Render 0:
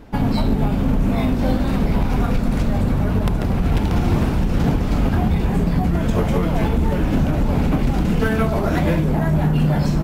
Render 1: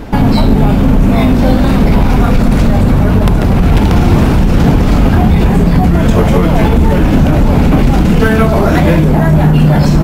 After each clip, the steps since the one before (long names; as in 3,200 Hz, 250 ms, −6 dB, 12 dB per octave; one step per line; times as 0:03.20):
boost into a limiter +18 dB
level −1 dB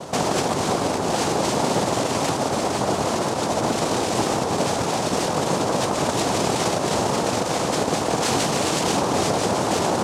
wave folding −8.5 dBFS
cochlear-implant simulation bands 2
level −7 dB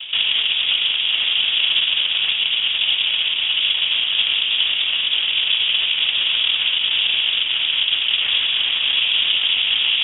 running median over 15 samples
high-frequency loss of the air 210 metres
voice inversion scrambler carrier 3,600 Hz
level +4.5 dB